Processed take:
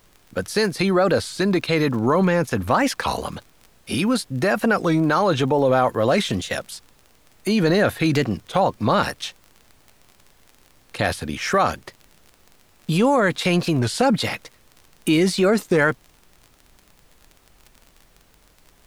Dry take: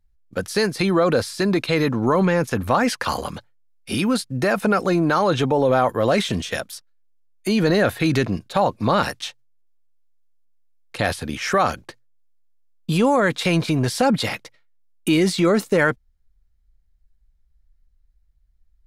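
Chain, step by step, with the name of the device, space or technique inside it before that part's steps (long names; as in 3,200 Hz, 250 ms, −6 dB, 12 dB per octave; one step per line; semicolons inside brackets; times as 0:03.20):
warped LP (wow of a warped record 33 1/3 rpm, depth 160 cents; surface crackle 36 per second −33 dBFS; pink noise bed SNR 35 dB)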